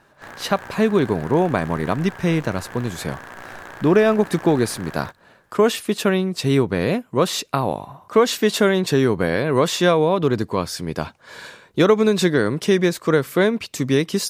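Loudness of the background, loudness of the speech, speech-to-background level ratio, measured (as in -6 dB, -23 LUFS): -38.0 LUFS, -20.0 LUFS, 18.0 dB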